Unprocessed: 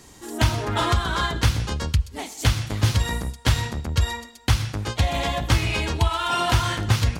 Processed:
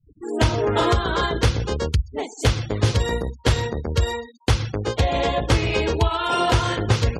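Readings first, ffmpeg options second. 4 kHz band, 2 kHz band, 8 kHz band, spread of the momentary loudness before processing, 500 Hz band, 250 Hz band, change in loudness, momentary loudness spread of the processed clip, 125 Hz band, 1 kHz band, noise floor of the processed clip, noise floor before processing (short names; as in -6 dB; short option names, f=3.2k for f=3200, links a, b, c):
0.0 dB, +0.5 dB, -2.0 dB, 5 LU, +8.5 dB, +3.5 dB, +1.5 dB, 5 LU, +0.5 dB, +2.0 dB, -51 dBFS, -47 dBFS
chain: -af "afftfilt=real='re*gte(hypot(re,im),0.0178)':imag='im*gte(hypot(re,im),0.0178)':win_size=1024:overlap=0.75,equalizer=f=450:w=1.7:g=12.5"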